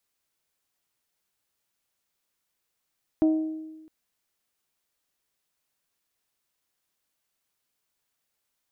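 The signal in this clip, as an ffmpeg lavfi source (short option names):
-f lavfi -i "aevalsrc='0.158*pow(10,-3*t/1.22)*sin(2*PI*315*t)+0.0422*pow(10,-3*t/0.751)*sin(2*PI*630*t)+0.0112*pow(10,-3*t/0.661)*sin(2*PI*756*t)+0.00299*pow(10,-3*t/0.565)*sin(2*PI*945*t)+0.000794*pow(10,-3*t/0.462)*sin(2*PI*1260*t)':d=0.66:s=44100"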